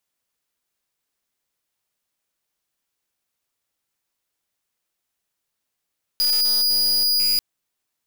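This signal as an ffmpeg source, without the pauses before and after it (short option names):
-f lavfi -i "aevalsrc='0.112*(2*lt(mod(4900*t,1),0.37)-1)':d=1.19:s=44100"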